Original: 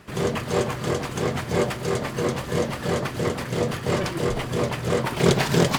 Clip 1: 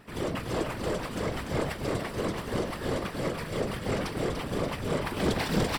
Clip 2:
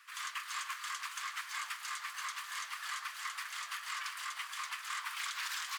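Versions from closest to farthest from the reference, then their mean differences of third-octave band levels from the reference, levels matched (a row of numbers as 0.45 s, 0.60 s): 1, 2; 2.5 dB, 21.5 dB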